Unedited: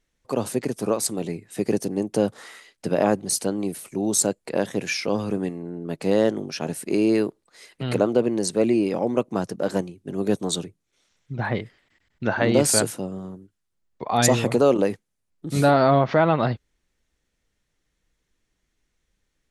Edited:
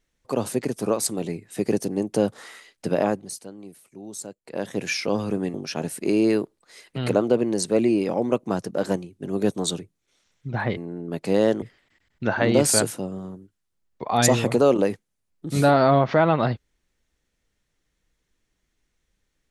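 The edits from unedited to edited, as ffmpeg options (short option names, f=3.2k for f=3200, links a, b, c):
-filter_complex "[0:a]asplit=6[a][b][c][d][e][f];[a]atrim=end=3.38,asetpts=PTS-STARTPTS,afade=t=out:st=2.93:d=0.45:silence=0.177828[g];[b]atrim=start=3.38:end=4.41,asetpts=PTS-STARTPTS,volume=-15dB[h];[c]atrim=start=4.41:end=5.542,asetpts=PTS-STARTPTS,afade=t=in:d=0.45:silence=0.177828[i];[d]atrim=start=6.388:end=11.622[j];[e]atrim=start=5.538:end=6.392[k];[f]atrim=start=11.618[l];[g][h][i]concat=n=3:v=0:a=1[m];[m][j]acrossfade=d=0.004:c1=hsin:c2=hsin[n];[n][k]acrossfade=d=0.004:c1=hsin:c2=hsin[o];[o][l]acrossfade=d=0.004:c1=hsin:c2=hsin"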